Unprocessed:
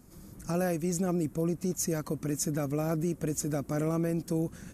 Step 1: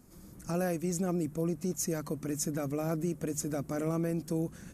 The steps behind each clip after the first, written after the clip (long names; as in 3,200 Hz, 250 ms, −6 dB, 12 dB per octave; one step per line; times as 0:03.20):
mains-hum notches 50/100/150 Hz
level −2 dB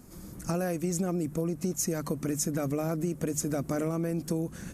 downward compressor, threshold −33 dBFS, peak gain reduction 7 dB
level +7 dB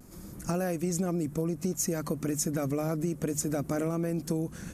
pitch vibrato 0.6 Hz 29 cents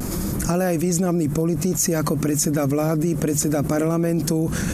envelope flattener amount 70%
level +7.5 dB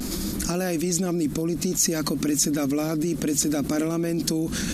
graphic EQ with 10 bands 125 Hz −11 dB, 250 Hz +6 dB, 500 Hz −4 dB, 1,000 Hz −4 dB, 4,000 Hz +10 dB
one half of a high-frequency compander decoder only
level −3 dB